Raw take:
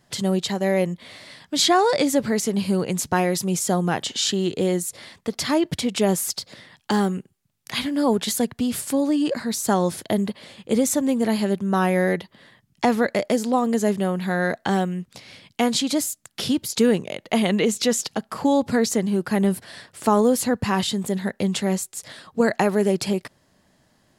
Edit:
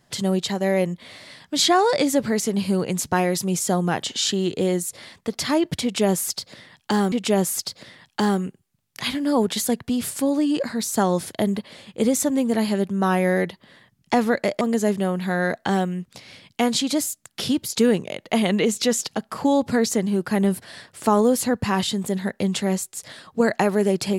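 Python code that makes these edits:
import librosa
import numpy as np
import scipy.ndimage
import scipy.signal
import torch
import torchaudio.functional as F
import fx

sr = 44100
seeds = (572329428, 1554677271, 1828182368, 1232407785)

y = fx.edit(x, sr, fx.repeat(start_s=5.83, length_s=1.29, count=2),
    fx.cut(start_s=13.32, length_s=0.29), tone=tone)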